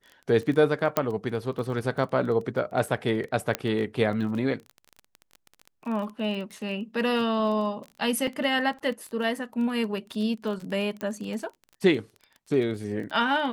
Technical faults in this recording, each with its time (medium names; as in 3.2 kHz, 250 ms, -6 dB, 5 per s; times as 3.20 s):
crackle 20 per s -33 dBFS
0.97 s: pop -8 dBFS
3.55 s: pop -10 dBFS
8.27 s: dropout 4.6 ms
11.01 s: pop -19 dBFS